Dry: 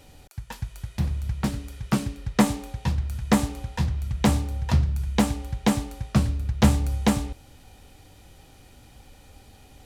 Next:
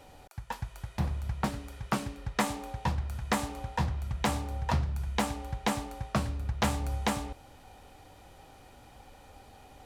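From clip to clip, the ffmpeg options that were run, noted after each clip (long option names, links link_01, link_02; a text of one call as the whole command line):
ffmpeg -i in.wav -filter_complex "[0:a]equalizer=frequency=860:width_type=o:width=2.2:gain=10.5,acrossover=split=1500[link_01][link_02];[link_01]alimiter=limit=-13dB:level=0:latency=1:release=305[link_03];[link_03][link_02]amix=inputs=2:normalize=0,volume=-6dB" out.wav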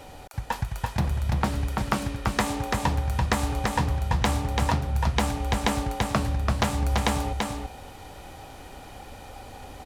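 ffmpeg -i in.wav -af "acompressor=threshold=-30dB:ratio=5,aecho=1:1:337:0.668,volume=9dB" out.wav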